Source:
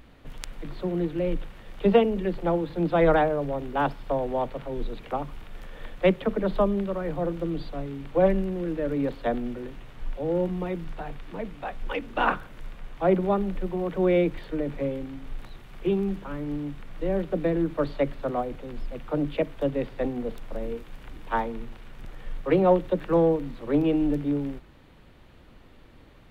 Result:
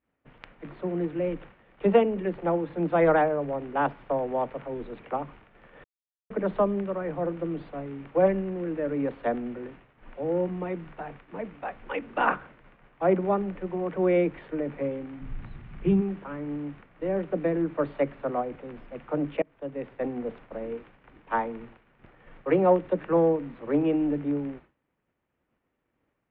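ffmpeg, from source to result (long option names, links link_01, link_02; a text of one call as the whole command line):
ffmpeg -i in.wav -filter_complex "[0:a]asplit=3[link_01][link_02][link_03];[link_01]afade=type=out:start_time=15.19:duration=0.02[link_04];[link_02]asubboost=boost=6.5:cutoff=180,afade=type=in:start_time=15.19:duration=0.02,afade=type=out:start_time=16:duration=0.02[link_05];[link_03]afade=type=in:start_time=16:duration=0.02[link_06];[link_04][link_05][link_06]amix=inputs=3:normalize=0,asplit=4[link_07][link_08][link_09][link_10];[link_07]atrim=end=5.84,asetpts=PTS-STARTPTS,afade=type=out:start_time=5.836:duration=0.004:curve=hsin[link_11];[link_08]atrim=start=5.84:end=6.3,asetpts=PTS-STARTPTS,volume=0[link_12];[link_09]atrim=start=6.3:end=19.42,asetpts=PTS-STARTPTS,afade=type=in:duration=0.004:curve=hsin,afade=type=out:start_time=13.116:duration=0.004:curve=hsin:silence=0.0668344[link_13];[link_10]atrim=start=19.42,asetpts=PTS-STARTPTS,afade=type=in:duration=0.72:silence=0.0668344[link_14];[link_11][link_12][link_13][link_14]concat=n=4:v=0:a=1,highpass=frequency=190:poles=1,agate=range=-33dB:threshold=-43dB:ratio=3:detection=peak,lowpass=frequency=2600:width=0.5412,lowpass=frequency=2600:width=1.3066" out.wav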